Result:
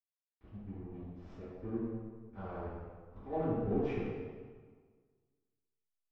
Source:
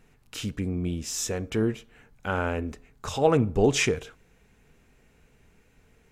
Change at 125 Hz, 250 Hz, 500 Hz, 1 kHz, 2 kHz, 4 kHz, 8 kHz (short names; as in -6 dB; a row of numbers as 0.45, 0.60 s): -12.5 dB, -10.0 dB, -12.5 dB, -13.0 dB, -22.0 dB, under -30 dB, under -40 dB